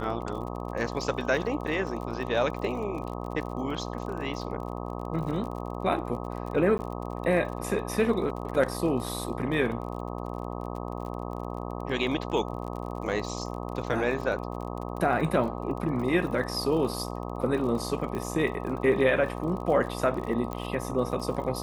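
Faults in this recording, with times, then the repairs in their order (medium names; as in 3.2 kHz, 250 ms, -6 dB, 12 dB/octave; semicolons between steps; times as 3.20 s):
buzz 60 Hz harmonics 21 -35 dBFS
crackle 42 per s -36 dBFS
6.78–6.79 s: dropout 10 ms
18.15 s: pop -22 dBFS
20.53 s: pop -20 dBFS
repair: de-click; de-hum 60 Hz, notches 21; interpolate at 6.78 s, 10 ms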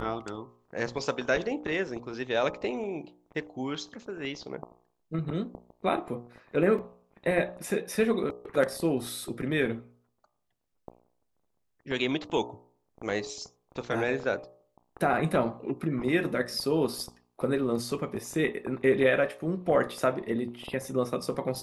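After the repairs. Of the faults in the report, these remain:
nothing left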